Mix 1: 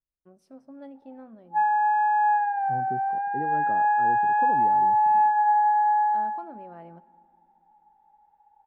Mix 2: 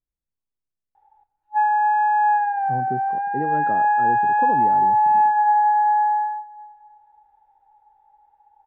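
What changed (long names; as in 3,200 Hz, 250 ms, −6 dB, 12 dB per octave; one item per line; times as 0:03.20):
first voice: muted
second voice +7.0 dB
background +3.5 dB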